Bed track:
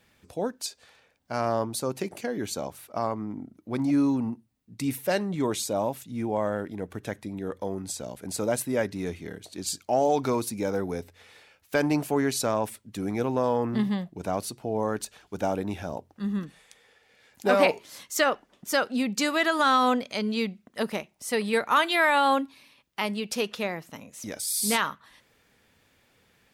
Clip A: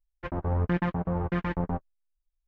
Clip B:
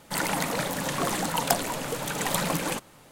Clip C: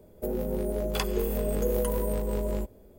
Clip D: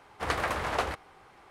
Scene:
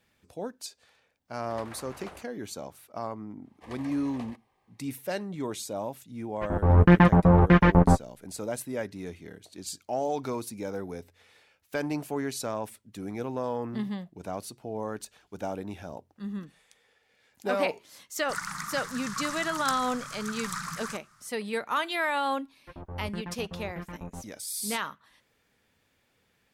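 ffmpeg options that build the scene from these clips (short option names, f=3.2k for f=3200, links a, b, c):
-filter_complex "[4:a]asplit=2[a][b];[1:a]asplit=2[c][d];[0:a]volume=-6.5dB[e];[b]asuperstop=centerf=1400:order=4:qfactor=3.7[f];[c]dynaudnorm=f=200:g=5:m=16dB[g];[2:a]firequalizer=gain_entry='entry(180,0);entry(360,-29);entry(540,-28);entry(1200,12);entry(2800,-7);entry(5300,7);entry(15000,-9)':delay=0.05:min_phase=1[h];[a]atrim=end=1.5,asetpts=PTS-STARTPTS,volume=-16.5dB,afade=t=in:d=0.004:c=hsin,afade=t=out:st=1.496:d=0.004:c=hsin,adelay=1280[i];[f]atrim=end=1.5,asetpts=PTS-STARTPTS,volume=-16.5dB,afade=t=in:d=0.05,afade=t=out:st=1.45:d=0.05,adelay=150381S[j];[g]atrim=end=2.47,asetpts=PTS-STARTPTS,volume=-3dB,afade=t=in:d=0.004:c=hsin,afade=t=out:st=2.466:d=0.004:c=hsin,adelay=272538S[k];[h]atrim=end=3.11,asetpts=PTS-STARTPTS,volume=-10.5dB,afade=t=in:d=0.004:c=hsin,afade=t=out:st=3.106:d=0.004:c=hsin,adelay=18180[l];[d]atrim=end=2.47,asetpts=PTS-STARTPTS,volume=-11.5dB,afade=t=in:d=0.004:c=hsin,afade=t=out:st=2.466:d=0.004:c=hsin,adelay=989604S[m];[e][i][j][k][l][m]amix=inputs=6:normalize=0"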